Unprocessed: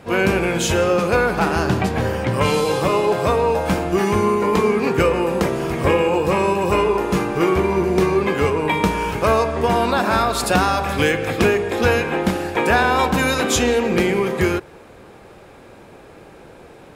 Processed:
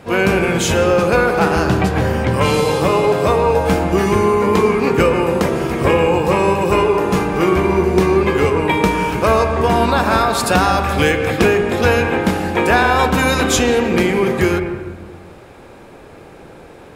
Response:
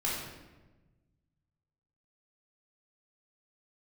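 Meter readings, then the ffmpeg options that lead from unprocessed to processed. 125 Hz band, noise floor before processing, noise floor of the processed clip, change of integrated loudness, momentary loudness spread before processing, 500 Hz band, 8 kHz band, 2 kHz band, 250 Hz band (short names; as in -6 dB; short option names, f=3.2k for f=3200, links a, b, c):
+4.0 dB, -44 dBFS, -40 dBFS, +3.5 dB, 3 LU, +3.5 dB, +2.5 dB, +3.0 dB, +3.5 dB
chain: -filter_complex "[0:a]asplit=2[a][b];[1:a]atrim=start_sample=2205,lowpass=2.4k,adelay=113[c];[b][c]afir=irnorm=-1:irlink=0,volume=-14dB[d];[a][d]amix=inputs=2:normalize=0,volume=2.5dB"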